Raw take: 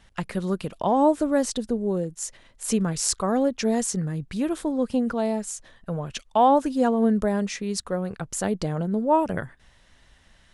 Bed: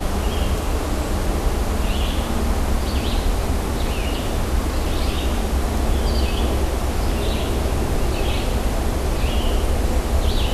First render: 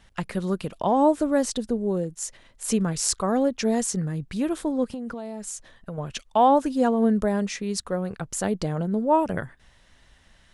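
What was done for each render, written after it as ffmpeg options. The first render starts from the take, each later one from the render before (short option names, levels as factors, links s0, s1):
-filter_complex "[0:a]asettb=1/sr,asplit=3[s0][s1][s2];[s0]atrim=end=4.844[s3];[s1]atrim=start=4.84:end=5.98,asetpts=PTS-STARTPTS,afade=t=in:d=0.004:c=qsin,afade=t=out:st=1.136:d=0.004:c=qsin,acompressor=threshold=0.0355:ratio=12:attack=3.2:release=140:knee=1:detection=peak[s4];[s2]atrim=start=5.976[s5];[s3][s4]acrossfade=d=0.004:c1=hsin:c2=qsin[s6];[s6][s5]acrossfade=d=0.004:c1=qsin:c2=hsin"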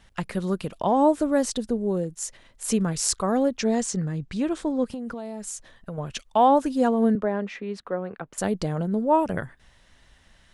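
-filter_complex "[0:a]asettb=1/sr,asplit=3[s0][s1][s2];[s0]atrim=end=3.584[s3];[s1]atrim=start=3.58:end=4.85,asetpts=PTS-STARTPTS,afade=t=in:d=0.004:c=qsin,afade=t=out:st=1.266:d=0.004:c=qsin,lowpass=f=8200:w=0.5412,lowpass=f=8200:w=1.3066[s4];[s2]atrim=start=4.846[s5];[s3][s4]acrossfade=d=0.004:c1=hsin:c2=qsin[s6];[s6][s5]acrossfade=d=0.004:c1=qsin:c2=hsin,asettb=1/sr,asplit=3[s7][s8][s9];[s7]atrim=end=7.154[s10];[s8]atrim=start=7.15:end=8.38,asetpts=PTS-STARTPTS,afade=t=in:d=0.004:c=qsin,afade=t=out:st=1.226:d=0.004:c=qsin,acrossover=split=210 3100:gain=0.178 1 0.0631[s11][s12][s13];[s11][s12][s13]amix=inputs=3:normalize=0[s14];[s9]atrim=start=8.376[s15];[s10][s14]acrossfade=d=0.004:c1=hsin:c2=qsin[s16];[s16][s15]acrossfade=d=0.004:c1=qsin:c2=hsin"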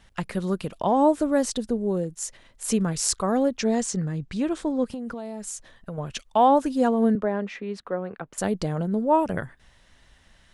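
-af anull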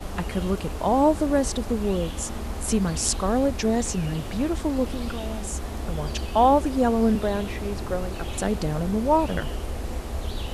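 -filter_complex "[1:a]volume=0.282[s0];[0:a][s0]amix=inputs=2:normalize=0"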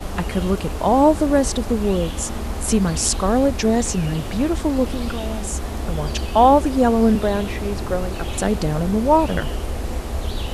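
-af "volume=1.78,alimiter=limit=0.891:level=0:latency=1"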